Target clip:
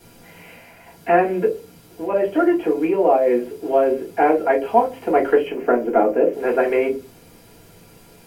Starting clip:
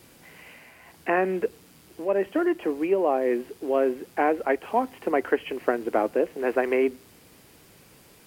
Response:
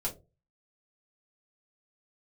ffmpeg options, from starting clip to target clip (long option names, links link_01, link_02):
-filter_complex "[0:a]asettb=1/sr,asplit=3[link_01][link_02][link_03];[link_01]atrim=end=5.474[link_04];[link_02]atrim=start=5.47:end=6.33,asetpts=PTS-STARTPTS,afade=type=in:duration=0.004:curve=qsin,afade=type=out:start_time=0.856:duration=0.004:curve=qsin,equalizer=frequency=100:width_type=o:width=0.67:gain=-11,equalizer=frequency=250:width_type=o:width=0.67:gain=4,equalizer=frequency=4000:width_type=o:width=0.67:gain=-10,equalizer=frequency=10000:width_type=o:width=0.67:gain=-9[link_05];[link_03]atrim=start=6.326[link_06];[link_04][link_05]acrossfade=duration=0.004:curve1=hsin:curve2=qsin[link_07];[link_07][link_06]acrossfade=duration=0.004:curve1=qsin:curve2=hsin[link_08];[1:a]atrim=start_sample=2205[link_09];[link_08][link_09]afir=irnorm=-1:irlink=0,volume=1.5dB"